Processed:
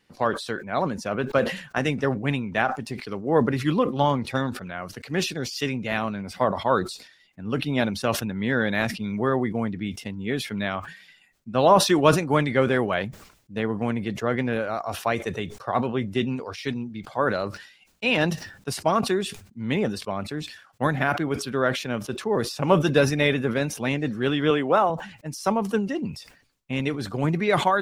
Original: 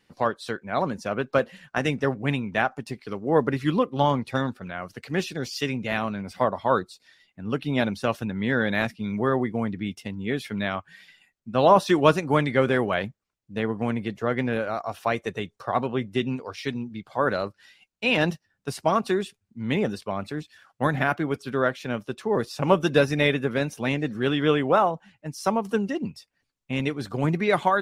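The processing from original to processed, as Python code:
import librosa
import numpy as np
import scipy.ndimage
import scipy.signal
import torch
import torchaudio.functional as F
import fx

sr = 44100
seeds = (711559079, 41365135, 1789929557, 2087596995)

y = fx.highpass(x, sr, hz=160.0, slope=12, at=(24.5, 24.9))
y = fx.sustainer(y, sr, db_per_s=96.0)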